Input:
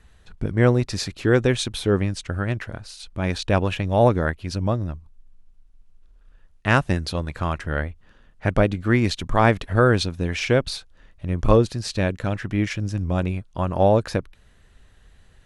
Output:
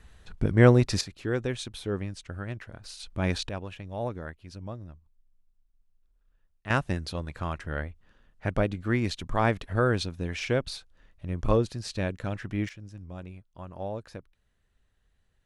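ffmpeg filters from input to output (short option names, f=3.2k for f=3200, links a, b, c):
-af "asetnsamples=n=441:p=0,asendcmd='1.01 volume volume -11dB;2.84 volume volume -3dB;3.49 volume volume -16dB;6.7 volume volume -7.5dB;12.69 volume volume -18dB',volume=0dB"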